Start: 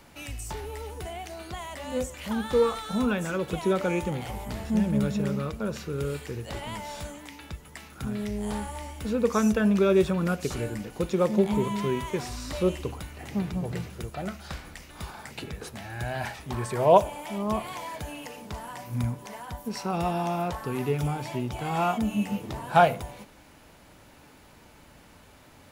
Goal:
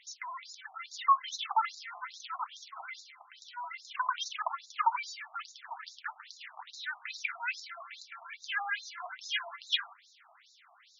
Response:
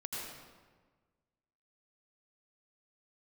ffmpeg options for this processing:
-af "asetrate=103194,aresample=44100,afftfilt=real='re*between(b*sr/1024,890*pow(5200/890,0.5+0.5*sin(2*PI*2.4*pts/sr))/1.41,890*pow(5200/890,0.5+0.5*sin(2*PI*2.4*pts/sr))*1.41)':imag='im*between(b*sr/1024,890*pow(5200/890,0.5+0.5*sin(2*PI*2.4*pts/sr))/1.41,890*pow(5200/890,0.5+0.5*sin(2*PI*2.4*pts/sr))*1.41)':win_size=1024:overlap=0.75"

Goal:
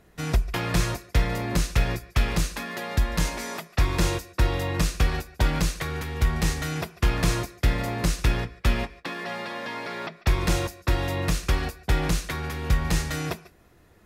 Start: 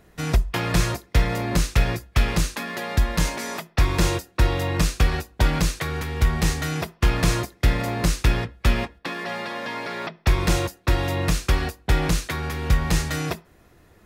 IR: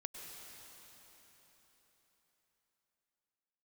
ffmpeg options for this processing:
-filter_complex "[1:a]atrim=start_sample=2205,atrim=end_sample=4410,asetrate=29547,aresample=44100[link_01];[0:a][link_01]afir=irnorm=-1:irlink=0"

